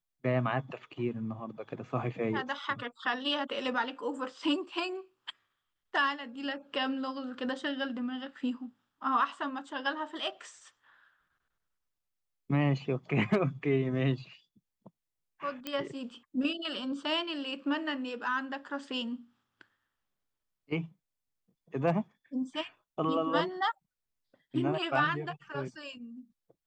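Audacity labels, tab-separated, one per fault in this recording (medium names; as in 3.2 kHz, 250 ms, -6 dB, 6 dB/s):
15.670000	15.670000	pop -20 dBFS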